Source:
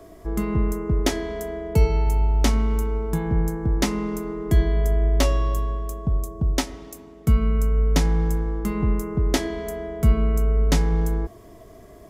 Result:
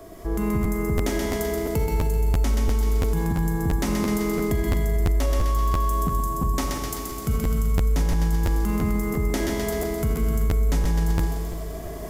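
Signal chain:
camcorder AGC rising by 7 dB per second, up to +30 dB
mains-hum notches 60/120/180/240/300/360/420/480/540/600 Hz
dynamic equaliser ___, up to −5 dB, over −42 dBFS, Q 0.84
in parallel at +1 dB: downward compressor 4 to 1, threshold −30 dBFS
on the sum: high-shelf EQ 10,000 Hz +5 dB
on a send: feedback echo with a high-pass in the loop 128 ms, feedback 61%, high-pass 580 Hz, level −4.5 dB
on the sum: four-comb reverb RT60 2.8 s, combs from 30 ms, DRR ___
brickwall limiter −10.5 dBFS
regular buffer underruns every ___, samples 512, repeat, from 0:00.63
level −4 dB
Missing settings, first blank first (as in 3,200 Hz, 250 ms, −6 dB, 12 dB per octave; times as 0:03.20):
4,000 Hz, 4 dB, 0.34 s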